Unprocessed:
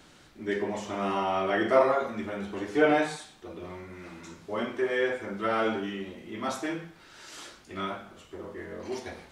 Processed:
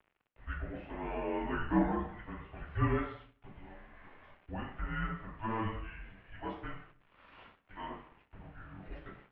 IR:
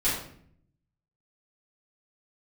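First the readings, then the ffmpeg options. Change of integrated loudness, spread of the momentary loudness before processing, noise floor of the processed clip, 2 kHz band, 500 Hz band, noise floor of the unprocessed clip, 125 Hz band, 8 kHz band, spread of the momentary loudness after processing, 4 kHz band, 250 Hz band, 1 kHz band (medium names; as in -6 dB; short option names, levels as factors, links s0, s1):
-8.5 dB, 20 LU, -74 dBFS, -10.5 dB, -14.5 dB, -55 dBFS, +4.0 dB, under -30 dB, 23 LU, -15.0 dB, -5.5 dB, -9.0 dB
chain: -filter_complex "[0:a]aeval=exprs='val(0)*gte(abs(val(0)),0.00447)':c=same,asplit=2[s0][s1];[1:a]atrim=start_sample=2205,asetrate=43218,aresample=44100[s2];[s1][s2]afir=irnorm=-1:irlink=0,volume=0.075[s3];[s0][s3]amix=inputs=2:normalize=0,highpass=f=330:t=q:w=0.5412,highpass=f=330:t=q:w=1.307,lowpass=f=3100:t=q:w=0.5176,lowpass=f=3100:t=q:w=0.7071,lowpass=f=3100:t=q:w=1.932,afreqshift=-340,volume=0.398"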